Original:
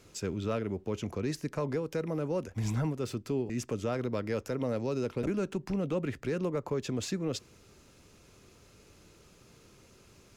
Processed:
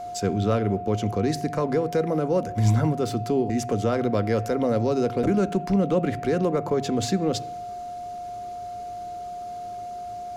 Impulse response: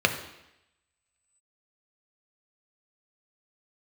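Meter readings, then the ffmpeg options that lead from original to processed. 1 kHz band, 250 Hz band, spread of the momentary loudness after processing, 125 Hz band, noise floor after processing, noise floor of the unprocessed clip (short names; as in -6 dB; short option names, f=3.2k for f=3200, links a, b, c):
+15.5 dB, +9.5 dB, 13 LU, +9.5 dB, -35 dBFS, -59 dBFS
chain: -filter_complex "[0:a]acontrast=70,aeval=exprs='val(0)+0.02*sin(2*PI*710*n/s)':c=same,asplit=2[a][b];[1:a]atrim=start_sample=2205,lowshelf=f=160:g=11.5[c];[b][c]afir=irnorm=-1:irlink=0,volume=-24dB[d];[a][d]amix=inputs=2:normalize=0"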